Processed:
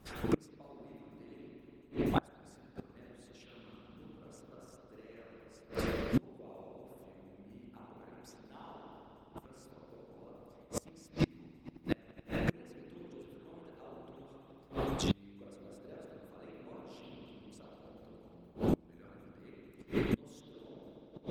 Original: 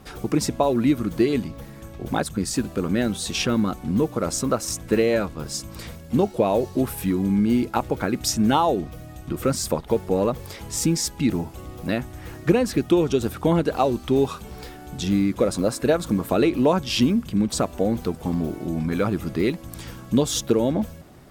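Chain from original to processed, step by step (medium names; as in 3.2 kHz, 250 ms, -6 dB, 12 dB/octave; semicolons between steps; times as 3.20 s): spring tank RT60 3.2 s, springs 40/52 ms, chirp 60 ms, DRR -9 dB; inverted gate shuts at -9 dBFS, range -28 dB; harmonic-percussive split harmonic -12 dB; trim -6.5 dB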